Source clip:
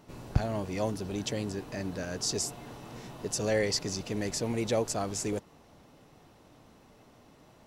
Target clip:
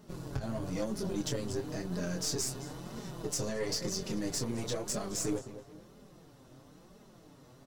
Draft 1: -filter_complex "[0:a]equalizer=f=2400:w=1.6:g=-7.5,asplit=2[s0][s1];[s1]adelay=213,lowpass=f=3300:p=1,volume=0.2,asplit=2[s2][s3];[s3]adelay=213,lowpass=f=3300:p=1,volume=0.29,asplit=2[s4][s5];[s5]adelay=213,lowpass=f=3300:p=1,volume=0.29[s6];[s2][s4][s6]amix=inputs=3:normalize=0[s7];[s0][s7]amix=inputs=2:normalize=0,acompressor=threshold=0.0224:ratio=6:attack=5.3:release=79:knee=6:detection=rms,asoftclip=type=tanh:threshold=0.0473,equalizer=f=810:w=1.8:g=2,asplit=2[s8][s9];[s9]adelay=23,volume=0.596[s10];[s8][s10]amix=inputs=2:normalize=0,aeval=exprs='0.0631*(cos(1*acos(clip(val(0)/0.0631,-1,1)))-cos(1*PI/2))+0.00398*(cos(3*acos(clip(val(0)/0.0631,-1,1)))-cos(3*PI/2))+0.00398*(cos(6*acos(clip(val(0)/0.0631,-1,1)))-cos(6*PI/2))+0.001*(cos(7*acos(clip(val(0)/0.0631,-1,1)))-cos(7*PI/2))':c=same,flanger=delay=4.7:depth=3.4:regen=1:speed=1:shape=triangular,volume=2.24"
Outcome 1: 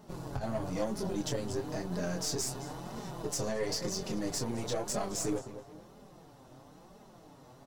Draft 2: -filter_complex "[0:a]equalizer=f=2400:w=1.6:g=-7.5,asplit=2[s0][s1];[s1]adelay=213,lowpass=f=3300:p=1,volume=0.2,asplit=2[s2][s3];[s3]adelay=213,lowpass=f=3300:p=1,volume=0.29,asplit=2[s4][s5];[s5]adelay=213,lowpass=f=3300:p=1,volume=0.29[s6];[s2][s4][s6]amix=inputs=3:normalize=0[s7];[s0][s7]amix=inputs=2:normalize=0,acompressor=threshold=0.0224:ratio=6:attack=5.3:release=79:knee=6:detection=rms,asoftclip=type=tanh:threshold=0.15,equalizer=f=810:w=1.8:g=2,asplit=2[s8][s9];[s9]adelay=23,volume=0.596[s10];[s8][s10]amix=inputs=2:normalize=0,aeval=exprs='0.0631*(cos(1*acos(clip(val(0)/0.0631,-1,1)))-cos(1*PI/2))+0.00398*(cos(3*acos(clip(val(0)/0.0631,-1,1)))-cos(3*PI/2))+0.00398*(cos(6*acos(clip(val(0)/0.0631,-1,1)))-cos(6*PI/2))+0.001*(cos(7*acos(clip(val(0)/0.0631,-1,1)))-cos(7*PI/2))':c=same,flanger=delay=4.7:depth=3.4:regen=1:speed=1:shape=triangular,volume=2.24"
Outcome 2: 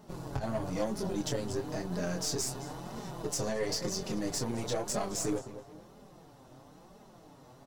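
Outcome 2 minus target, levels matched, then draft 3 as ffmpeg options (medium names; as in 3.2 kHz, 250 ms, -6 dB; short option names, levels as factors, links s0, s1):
1 kHz band +4.5 dB
-filter_complex "[0:a]equalizer=f=2400:w=1.6:g=-7.5,asplit=2[s0][s1];[s1]adelay=213,lowpass=f=3300:p=1,volume=0.2,asplit=2[s2][s3];[s3]adelay=213,lowpass=f=3300:p=1,volume=0.29,asplit=2[s4][s5];[s5]adelay=213,lowpass=f=3300:p=1,volume=0.29[s6];[s2][s4][s6]amix=inputs=3:normalize=0[s7];[s0][s7]amix=inputs=2:normalize=0,acompressor=threshold=0.0224:ratio=6:attack=5.3:release=79:knee=6:detection=rms,asoftclip=type=tanh:threshold=0.15,equalizer=f=810:w=1.8:g=-6,asplit=2[s8][s9];[s9]adelay=23,volume=0.596[s10];[s8][s10]amix=inputs=2:normalize=0,aeval=exprs='0.0631*(cos(1*acos(clip(val(0)/0.0631,-1,1)))-cos(1*PI/2))+0.00398*(cos(3*acos(clip(val(0)/0.0631,-1,1)))-cos(3*PI/2))+0.00398*(cos(6*acos(clip(val(0)/0.0631,-1,1)))-cos(6*PI/2))+0.001*(cos(7*acos(clip(val(0)/0.0631,-1,1)))-cos(7*PI/2))':c=same,flanger=delay=4.7:depth=3.4:regen=1:speed=1:shape=triangular,volume=2.24"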